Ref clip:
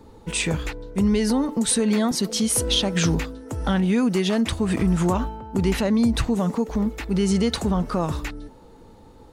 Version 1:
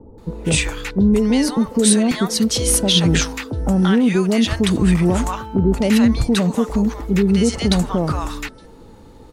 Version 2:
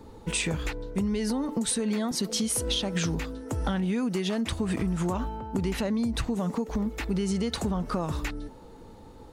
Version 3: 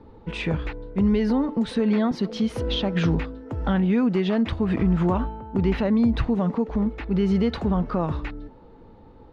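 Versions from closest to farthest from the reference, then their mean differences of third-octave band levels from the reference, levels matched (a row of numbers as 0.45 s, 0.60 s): 2, 3, 1; 2.5 dB, 4.0 dB, 5.5 dB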